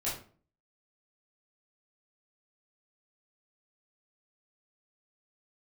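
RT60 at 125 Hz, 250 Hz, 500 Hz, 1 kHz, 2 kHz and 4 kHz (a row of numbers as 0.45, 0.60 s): 0.55, 0.55, 0.45, 0.40, 0.35, 0.30 s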